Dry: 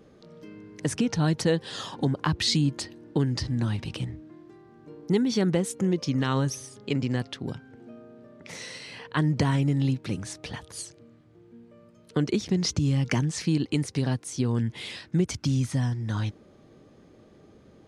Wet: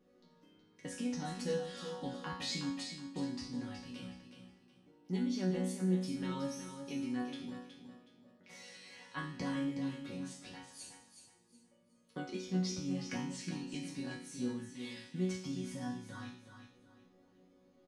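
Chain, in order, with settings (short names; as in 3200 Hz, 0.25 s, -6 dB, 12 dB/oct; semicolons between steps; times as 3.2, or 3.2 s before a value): resonator bank F#3 sus4, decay 0.61 s; feedback echo 0.369 s, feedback 29%, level -8.5 dB; gain +7.5 dB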